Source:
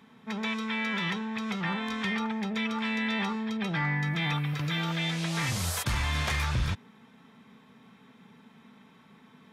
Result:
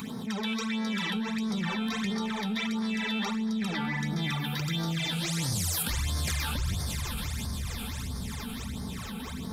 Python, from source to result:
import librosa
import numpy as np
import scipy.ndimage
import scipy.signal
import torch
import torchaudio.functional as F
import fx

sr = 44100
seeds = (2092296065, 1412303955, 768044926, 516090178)

p1 = fx.low_shelf(x, sr, hz=320.0, db=8.5)
p2 = p1 + fx.echo_diffused(p1, sr, ms=542, feedback_pct=50, wet_db=-11.5, dry=0)
p3 = fx.rev_schroeder(p2, sr, rt60_s=3.4, comb_ms=31, drr_db=12.5)
p4 = fx.phaser_stages(p3, sr, stages=12, low_hz=100.0, high_hz=2700.0, hz=1.5, feedback_pct=25)
p5 = fx.bass_treble(p4, sr, bass_db=-3, treble_db=13)
p6 = fx.hum_notches(p5, sr, base_hz=50, count=3)
p7 = 10.0 ** (-34.5 / 20.0) * np.tanh(p6 / 10.0 ** (-34.5 / 20.0))
p8 = p6 + (p7 * librosa.db_to_amplitude(-10.5))
p9 = fx.env_flatten(p8, sr, amount_pct=70)
y = p9 * librosa.db_to_amplitude(-7.5)